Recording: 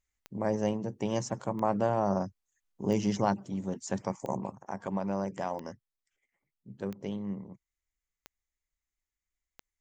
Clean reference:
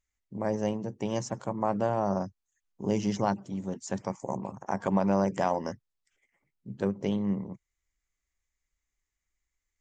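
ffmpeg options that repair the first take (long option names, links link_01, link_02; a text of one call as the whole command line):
ffmpeg -i in.wav -af "adeclick=threshold=4,asetnsamples=nb_out_samples=441:pad=0,asendcmd='4.5 volume volume 7dB',volume=0dB" out.wav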